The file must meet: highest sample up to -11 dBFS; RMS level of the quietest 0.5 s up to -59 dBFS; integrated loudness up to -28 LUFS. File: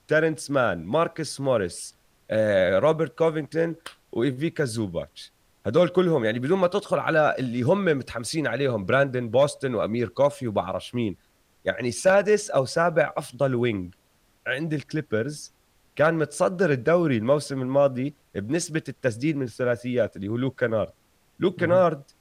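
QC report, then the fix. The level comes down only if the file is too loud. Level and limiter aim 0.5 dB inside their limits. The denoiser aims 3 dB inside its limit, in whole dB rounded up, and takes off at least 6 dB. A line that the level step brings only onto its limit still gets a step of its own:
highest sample -10.0 dBFS: fail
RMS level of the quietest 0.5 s -64 dBFS: pass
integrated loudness -24.5 LUFS: fail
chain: trim -4 dB

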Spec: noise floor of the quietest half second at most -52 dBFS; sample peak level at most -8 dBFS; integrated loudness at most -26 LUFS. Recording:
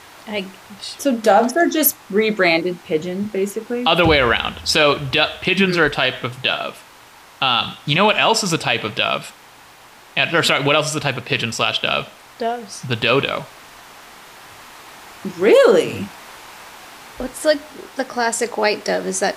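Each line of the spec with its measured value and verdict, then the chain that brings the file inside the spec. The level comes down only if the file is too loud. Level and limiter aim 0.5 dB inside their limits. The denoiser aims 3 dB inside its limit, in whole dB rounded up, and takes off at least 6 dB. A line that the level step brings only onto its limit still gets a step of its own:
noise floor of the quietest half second -45 dBFS: fail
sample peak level -3.0 dBFS: fail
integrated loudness -17.5 LUFS: fail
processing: trim -9 dB

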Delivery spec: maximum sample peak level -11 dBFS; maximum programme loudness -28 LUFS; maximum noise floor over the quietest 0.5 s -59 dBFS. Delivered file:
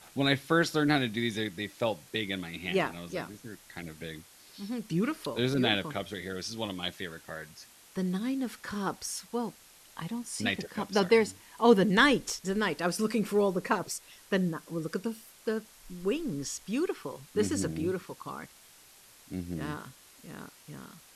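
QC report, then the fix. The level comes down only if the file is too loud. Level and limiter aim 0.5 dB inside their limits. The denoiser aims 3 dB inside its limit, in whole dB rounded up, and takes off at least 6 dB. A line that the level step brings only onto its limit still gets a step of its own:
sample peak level -9.0 dBFS: fail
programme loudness -30.5 LUFS: pass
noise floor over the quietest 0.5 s -57 dBFS: fail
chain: noise reduction 6 dB, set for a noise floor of -57 dBFS; peak limiter -11.5 dBFS

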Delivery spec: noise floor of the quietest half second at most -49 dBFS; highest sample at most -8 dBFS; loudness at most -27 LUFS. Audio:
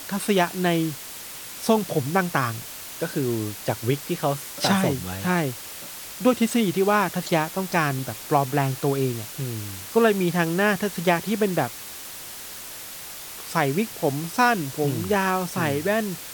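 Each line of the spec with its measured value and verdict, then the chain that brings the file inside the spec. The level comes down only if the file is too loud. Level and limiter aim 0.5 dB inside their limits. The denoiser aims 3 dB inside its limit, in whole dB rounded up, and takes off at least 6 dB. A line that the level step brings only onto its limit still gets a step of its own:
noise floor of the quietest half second -38 dBFS: fail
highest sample -5.5 dBFS: fail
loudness -24.0 LUFS: fail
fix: noise reduction 11 dB, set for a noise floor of -38 dBFS; trim -3.5 dB

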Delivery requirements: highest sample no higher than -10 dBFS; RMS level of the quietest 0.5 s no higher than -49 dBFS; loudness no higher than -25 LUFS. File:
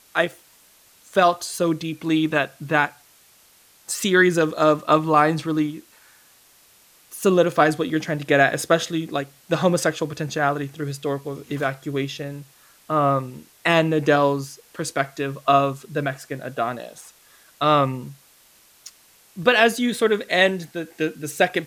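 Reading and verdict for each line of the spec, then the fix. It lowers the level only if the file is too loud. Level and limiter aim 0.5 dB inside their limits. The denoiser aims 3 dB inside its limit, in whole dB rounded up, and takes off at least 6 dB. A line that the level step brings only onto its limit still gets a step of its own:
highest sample -4.0 dBFS: fail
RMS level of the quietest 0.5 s -55 dBFS: pass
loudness -21.5 LUFS: fail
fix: trim -4 dB; peak limiter -10.5 dBFS

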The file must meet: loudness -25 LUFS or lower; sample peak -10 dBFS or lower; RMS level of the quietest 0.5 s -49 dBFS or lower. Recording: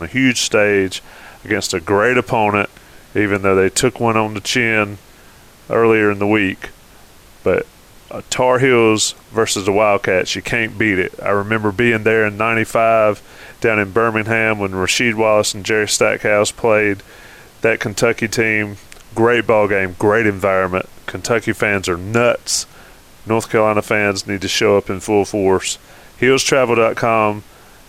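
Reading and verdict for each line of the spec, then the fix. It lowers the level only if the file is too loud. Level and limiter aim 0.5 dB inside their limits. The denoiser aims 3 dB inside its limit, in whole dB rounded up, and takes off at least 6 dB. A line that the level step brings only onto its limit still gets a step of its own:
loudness -15.5 LUFS: fail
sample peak -2.5 dBFS: fail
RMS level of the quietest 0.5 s -43 dBFS: fail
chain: trim -10 dB

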